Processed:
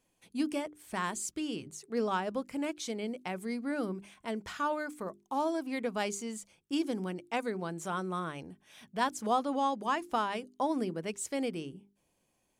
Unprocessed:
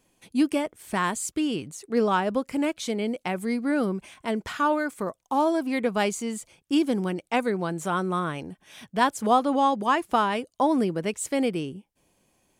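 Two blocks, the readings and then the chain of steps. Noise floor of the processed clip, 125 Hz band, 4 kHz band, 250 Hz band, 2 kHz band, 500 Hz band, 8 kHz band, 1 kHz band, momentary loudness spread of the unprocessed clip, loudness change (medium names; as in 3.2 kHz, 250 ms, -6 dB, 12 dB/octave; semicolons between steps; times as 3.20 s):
-76 dBFS, -9.0 dB, -7.0 dB, -9.5 dB, -8.5 dB, -8.5 dB, -6.0 dB, -8.5 dB, 9 LU, -8.5 dB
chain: hum notches 50/100/150/200/250/300/350/400 Hz; dynamic bell 5.8 kHz, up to +5 dB, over -48 dBFS, Q 1.5; trim -8.5 dB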